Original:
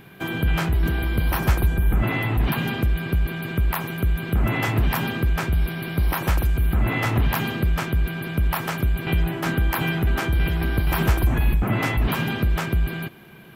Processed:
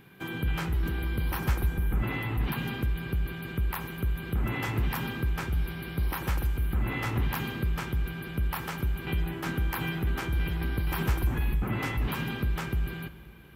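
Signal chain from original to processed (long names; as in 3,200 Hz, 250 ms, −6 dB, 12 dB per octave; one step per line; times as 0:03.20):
parametric band 650 Hz −8.5 dB 0.22 octaves
tuned comb filter 62 Hz, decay 1.6 s, harmonics all, mix 50%
on a send: convolution reverb RT60 2.6 s, pre-delay 50 ms, DRR 17 dB
on the sum: level −2.5 dB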